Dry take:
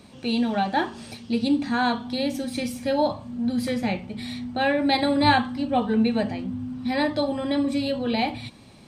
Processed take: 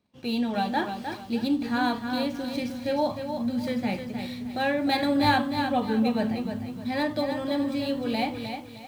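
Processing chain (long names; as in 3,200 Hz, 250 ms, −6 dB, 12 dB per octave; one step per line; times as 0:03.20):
running median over 5 samples
noise gate −45 dBFS, range −22 dB
feedback echo at a low word length 307 ms, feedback 35%, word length 8 bits, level −7 dB
level −3.5 dB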